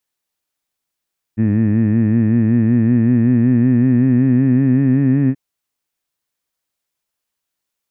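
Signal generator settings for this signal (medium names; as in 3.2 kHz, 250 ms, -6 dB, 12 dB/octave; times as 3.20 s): formant vowel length 3.98 s, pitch 106 Hz, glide +4.5 st, F1 250 Hz, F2 1.8 kHz, F3 2.5 kHz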